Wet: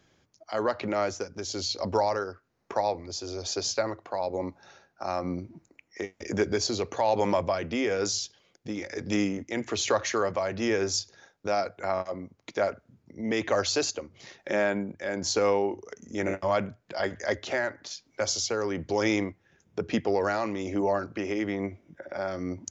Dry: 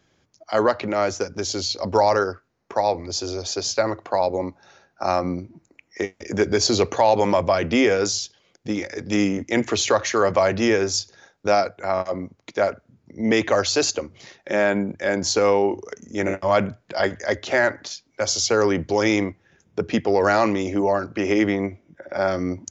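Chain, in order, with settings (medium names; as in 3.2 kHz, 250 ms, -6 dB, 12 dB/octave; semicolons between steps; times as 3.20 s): in parallel at +2 dB: compression, threshold -32 dBFS, peak gain reduction 18.5 dB; on the sum: tremolo 1.1 Hz, depth 44%; trim -7.5 dB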